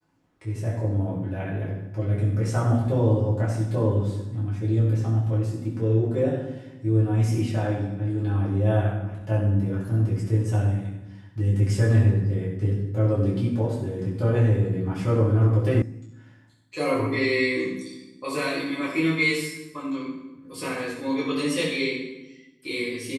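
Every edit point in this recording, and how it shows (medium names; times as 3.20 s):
15.82 s: sound stops dead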